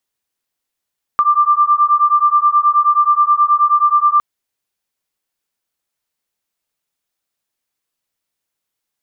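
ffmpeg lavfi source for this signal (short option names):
-f lavfi -i "aevalsrc='0.237*(sin(2*PI*1180*t)+sin(2*PI*1189.4*t))':d=3.01:s=44100"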